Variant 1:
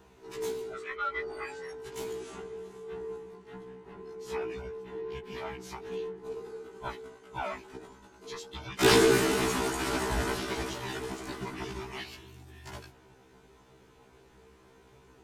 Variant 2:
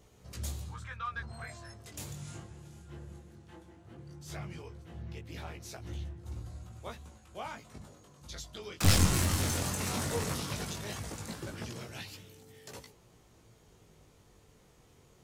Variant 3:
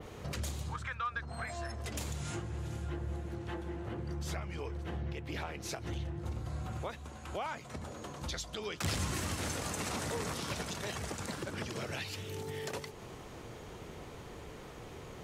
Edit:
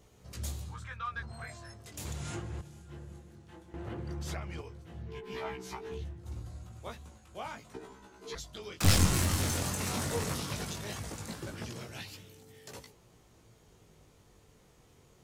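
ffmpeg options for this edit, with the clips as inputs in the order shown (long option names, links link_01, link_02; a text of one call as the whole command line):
ffmpeg -i take0.wav -i take1.wav -i take2.wav -filter_complex "[2:a]asplit=2[link_01][link_02];[0:a]asplit=2[link_03][link_04];[1:a]asplit=5[link_05][link_06][link_07][link_08][link_09];[link_05]atrim=end=2.052[link_10];[link_01]atrim=start=2.048:end=2.612[link_11];[link_06]atrim=start=2.608:end=3.742[link_12];[link_02]atrim=start=3.738:end=4.612[link_13];[link_07]atrim=start=4.608:end=5.22[link_14];[link_03]atrim=start=5.06:end=6.03[link_15];[link_08]atrim=start=5.87:end=7.742[link_16];[link_04]atrim=start=7.738:end=8.352[link_17];[link_09]atrim=start=8.348[link_18];[link_10][link_11]acrossfade=duration=0.004:curve1=hsin:curve2=hsin[link_19];[link_19][link_12]acrossfade=duration=0.004:curve1=hsin:curve2=hsin[link_20];[link_20][link_13]acrossfade=duration=0.004:curve1=hsin:curve2=hsin[link_21];[link_21][link_14]acrossfade=duration=0.004:curve1=hsin:curve2=hsin[link_22];[link_22][link_15]acrossfade=duration=0.16:curve1=tri:curve2=tri[link_23];[link_23][link_16]acrossfade=duration=0.16:curve1=tri:curve2=tri[link_24];[link_24][link_17]acrossfade=duration=0.004:curve1=hsin:curve2=hsin[link_25];[link_25][link_18]acrossfade=duration=0.004:curve1=hsin:curve2=hsin" out.wav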